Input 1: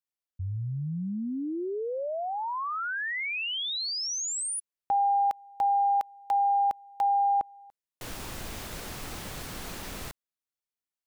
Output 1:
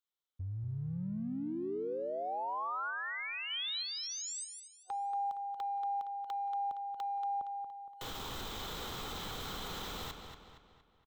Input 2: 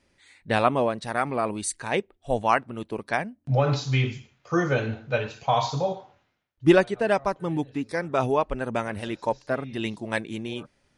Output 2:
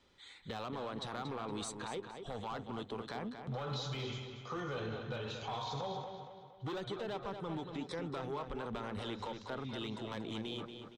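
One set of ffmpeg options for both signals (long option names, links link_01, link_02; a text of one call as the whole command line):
ffmpeg -i in.wav -filter_complex "[0:a]asoftclip=type=hard:threshold=-18dB,acrossover=split=320|900[link_01][link_02][link_03];[link_01]acompressor=threshold=-33dB:ratio=4[link_04];[link_02]acompressor=threshold=-32dB:ratio=4[link_05];[link_03]acompressor=threshold=-37dB:ratio=4[link_06];[link_04][link_05][link_06]amix=inputs=3:normalize=0,superequalizer=7b=1.58:9b=1.78:10b=2:13b=2.82:16b=0.355,acompressor=threshold=-32dB:ratio=6:attack=0.26:release=22:knee=1:detection=rms,asplit=2[link_07][link_08];[link_08]adelay=233,lowpass=frequency=5000:poles=1,volume=-7dB,asplit=2[link_09][link_10];[link_10]adelay=233,lowpass=frequency=5000:poles=1,volume=0.47,asplit=2[link_11][link_12];[link_12]adelay=233,lowpass=frequency=5000:poles=1,volume=0.47,asplit=2[link_13][link_14];[link_14]adelay=233,lowpass=frequency=5000:poles=1,volume=0.47,asplit=2[link_15][link_16];[link_16]adelay=233,lowpass=frequency=5000:poles=1,volume=0.47,asplit=2[link_17][link_18];[link_18]adelay=233,lowpass=frequency=5000:poles=1,volume=0.47[link_19];[link_07][link_09][link_11][link_13][link_15][link_17][link_19]amix=inputs=7:normalize=0,volume=-4dB" out.wav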